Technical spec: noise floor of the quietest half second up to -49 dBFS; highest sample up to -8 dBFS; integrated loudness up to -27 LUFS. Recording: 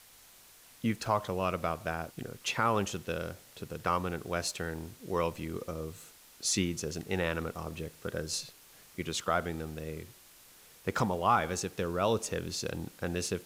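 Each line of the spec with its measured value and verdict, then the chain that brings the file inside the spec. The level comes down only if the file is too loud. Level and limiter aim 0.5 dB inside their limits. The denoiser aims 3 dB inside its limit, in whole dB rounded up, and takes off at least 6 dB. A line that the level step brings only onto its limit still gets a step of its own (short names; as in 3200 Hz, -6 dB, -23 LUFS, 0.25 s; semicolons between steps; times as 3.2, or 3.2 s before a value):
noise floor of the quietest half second -57 dBFS: OK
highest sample -14.0 dBFS: OK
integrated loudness -33.5 LUFS: OK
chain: none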